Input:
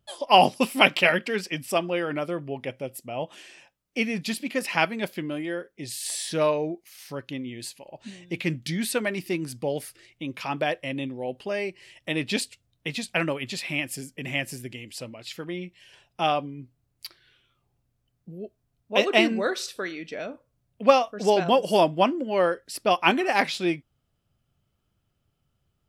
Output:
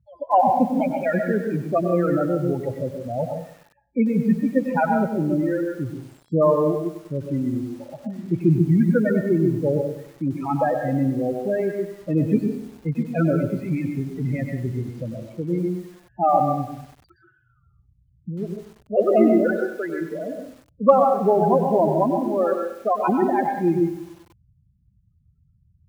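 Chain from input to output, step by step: loudest bins only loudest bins 8; high-pass 59 Hz 12 dB/octave; resonant high shelf 2.2 kHz -14 dB, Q 3; gain riding within 3 dB 2 s; RIAA curve playback; Chebyshev shaper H 2 -32 dB, 3 -42 dB, 4 -38 dB, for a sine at -0.5 dBFS; reverberation RT60 0.35 s, pre-delay 112 ms, DRR 4.5 dB; bit-crushed delay 97 ms, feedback 55%, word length 7-bit, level -11.5 dB

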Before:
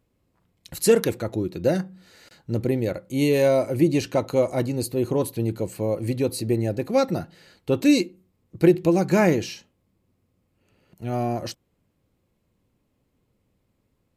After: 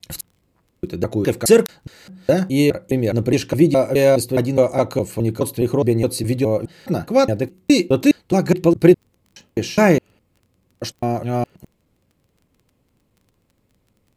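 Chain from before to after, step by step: slices played last to first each 208 ms, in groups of 4; crackle 18 per s -48 dBFS; trim +5.5 dB

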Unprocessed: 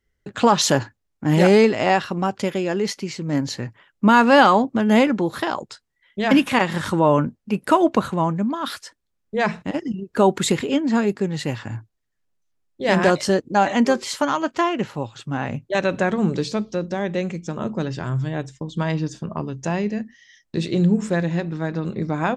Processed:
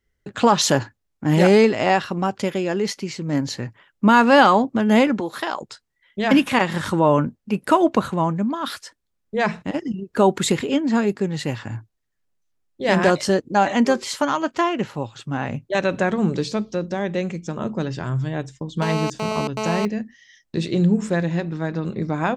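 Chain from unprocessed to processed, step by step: 5.20–5.61 s: high-pass 520 Hz 6 dB/octave; 18.82–19.85 s: mobile phone buzz -25 dBFS

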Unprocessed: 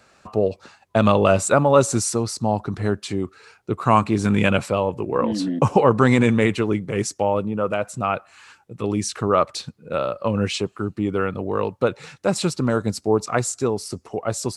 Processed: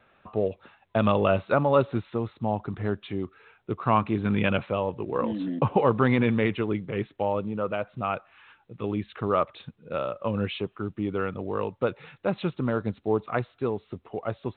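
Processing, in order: trim -6 dB; µ-law 64 kbps 8 kHz

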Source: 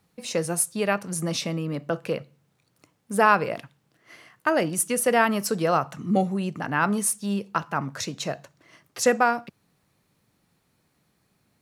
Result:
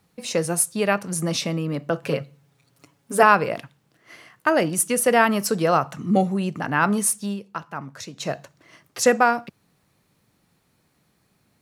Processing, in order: 2.02–3.23 s: comb 7.2 ms, depth 85%; 7.22–8.30 s: dip -8.5 dB, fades 0.15 s; trim +3 dB

